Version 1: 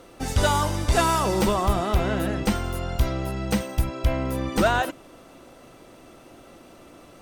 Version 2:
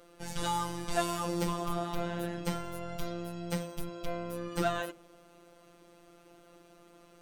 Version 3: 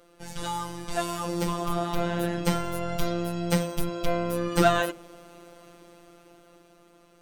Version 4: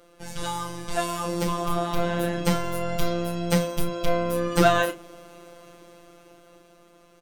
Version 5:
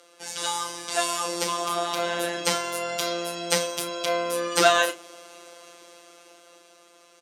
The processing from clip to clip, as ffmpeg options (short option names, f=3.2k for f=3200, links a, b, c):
-af "afftfilt=real='hypot(re,im)*cos(PI*b)':imag='0':win_size=1024:overlap=0.75,bandreject=f=55.6:t=h:w=4,bandreject=f=111.2:t=h:w=4,bandreject=f=166.8:t=h:w=4,bandreject=f=222.4:t=h:w=4,bandreject=f=278:t=h:w=4,bandreject=f=333.6:t=h:w=4,bandreject=f=389.2:t=h:w=4,bandreject=f=444.8:t=h:w=4,bandreject=f=500.4:t=h:w=4,bandreject=f=556:t=h:w=4,bandreject=f=611.6:t=h:w=4,bandreject=f=667.2:t=h:w=4,bandreject=f=722.8:t=h:w=4,bandreject=f=778.4:t=h:w=4,bandreject=f=834:t=h:w=4,bandreject=f=889.6:t=h:w=4,bandreject=f=945.2:t=h:w=4,bandreject=f=1.0008k:t=h:w=4,bandreject=f=1.0564k:t=h:w=4,bandreject=f=1.112k:t=h:w=4,bandreject=f=1.1676k:t=h:w=4,bandreject=f=1.2232k:t=h:w=4,bandreject=f=1.2788k:t=h:w=4,bandreject=f=1.3344k:t=h:w=4,bandreject=f=1.39k:t=h:w=4,bandreject=f=1.4456k:t=h:w=4,bandreject=f=1.5012k:t=h:w=4,volume=-6.5dB"
-af "dynaudnorm=f=320:g=11:m=11.5dB"
-filter_complex "[0:a]asplit=2[a][b];[b]adelay=33,volume=-9.5dB[c];[a][c]amix=inputs=2:normalize=0,volume=2dB"
-af "crystalizer=i=3.5:c=0,highpass=400,lowpass=7k"